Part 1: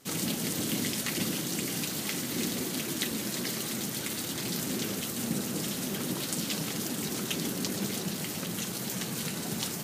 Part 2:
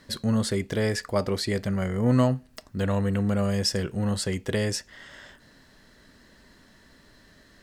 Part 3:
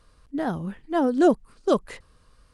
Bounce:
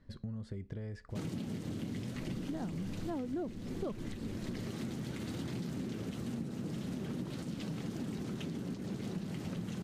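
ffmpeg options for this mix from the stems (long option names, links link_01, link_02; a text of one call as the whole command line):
ffmpeg -i stem1.wav -i stem2.wav -i stem3.wav -filter_complex "[0:a]alimiter=limit=-19.5dB:level=0:latency=1:release=488,bandreject=frequency=50:width_type=h:width=6,bandreject=frequency=100:width_type=h:width=6,bandreject=frequency=150:width_type=h:width=6,bandreject=frequency=200:width_type=h:width=6,adelay=1100,volume=-1dB[link_01];[1:a]acompressor=threshold=-29dB:ratio=6,volume=-16dB[link_02];[2:a]adelay=2150,volume=-5dB[link_03];[link_01][link_02][link_03]amix=inputs=3:normalize=0,aemphasis=mode=reproduction:type=riaa,acompressor=threshold=-36dB:ratio=8" out.wav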